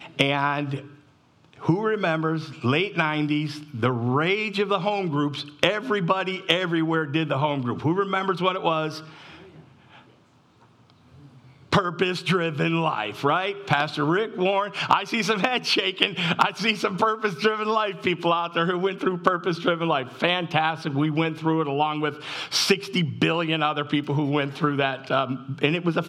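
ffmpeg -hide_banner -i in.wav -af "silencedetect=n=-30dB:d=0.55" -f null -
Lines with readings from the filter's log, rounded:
silence_start: 0.79
silence_end: 1.63 | silence_duration: 0.84
silence_start: 8.99
silence_end: 11.73 | silence_duration: 2.74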